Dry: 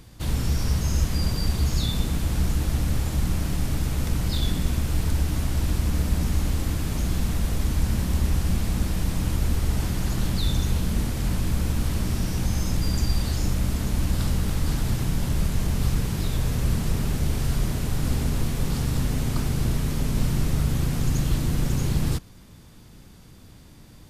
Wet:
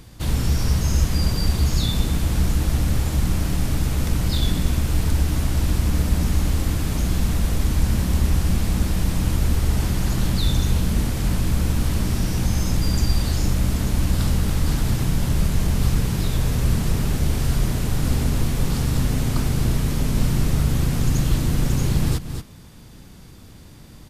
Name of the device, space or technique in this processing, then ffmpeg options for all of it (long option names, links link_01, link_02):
ducked delay: -filter_complex "[0:a]asplit=3[link_01][link_02][link_03];[link_02]adelay=230,volume=-7.5dB[link_04];[link_03]apad=whole_len=1072903[link_05];[link_04][link_05]sidechaincompress=threshold=-34dB:ratio=4:attack=31:release=205[link_06];[link_01][link_06]amix=inputs=2:normalize=0,volume=3.5dB"